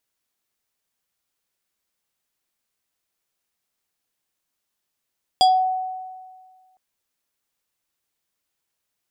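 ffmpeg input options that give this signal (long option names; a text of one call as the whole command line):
ffmpeg -f lavfi -i "aevalsrc='0.316*pow(10,-3*t/1.69)*sin(2*PI*747*t+1*pow(10,-3*t/0.28)*sin(2*PI*5.47*747*t))':duration=1.36:sample_rate=44100" out.wav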